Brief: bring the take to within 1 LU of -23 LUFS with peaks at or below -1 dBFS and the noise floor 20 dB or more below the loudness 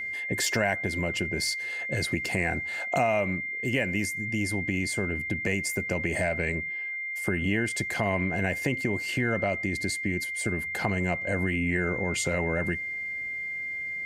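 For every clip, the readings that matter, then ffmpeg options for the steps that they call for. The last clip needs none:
steady tone 2.1 kHz; tone level -31 dBFS; loudness -28.0 LUFS; peak level -12.0 dBFS; loudness target -23.0 LUFS
-> -af "bandreject=f=2100:w=30"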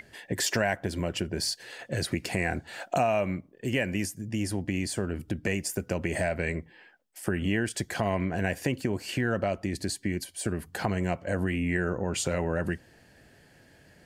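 steady tone not found; loudness -30.5 LUFS; peak level -13.0 dBFS; loudness target -23.0 LUFS
-> -af "volume=2.37"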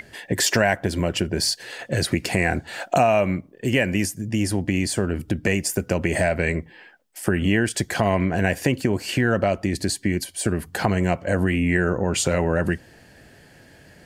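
loudness -23.0 LUFS; peak level -5.5 dBFS; noise floor -51 dBFS

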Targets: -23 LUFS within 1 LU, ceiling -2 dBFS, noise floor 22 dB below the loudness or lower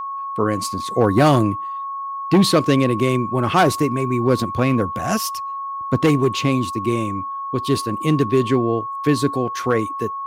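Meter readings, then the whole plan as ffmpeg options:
steady tone 1.1 kHz; tone level -25 dBFS; loudness -19.5 LUFS; peak level -2.0 dBFS; loudness target -23.0 LUFS
-> -af "bandreject=f=1100:w=30"
-af "volume=0.668"

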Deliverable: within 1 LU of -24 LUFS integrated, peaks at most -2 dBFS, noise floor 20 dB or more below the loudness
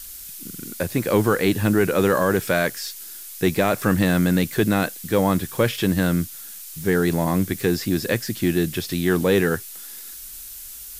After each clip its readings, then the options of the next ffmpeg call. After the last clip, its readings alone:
noise floor -38 dBFS; noise floor target -42 dBFS; loudness -21.5 LUFS; peak level -6.5 dBFS; loudness target -24.0 LUFS
-> -af "afftdn=nr=6:nf=-38"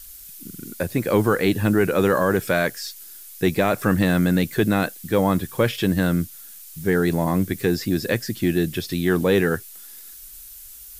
noise floor -42 dBFS; loudness -21.5 LUFS; peak level -7.0 dBFS; loudness target -24.0 LUFS
-> -af "volume=0.75"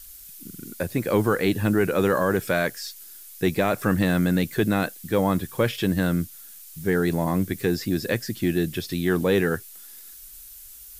loudness -24.0 LUFS; peak level -9.5 dBFS; noise floor -44 dBFS

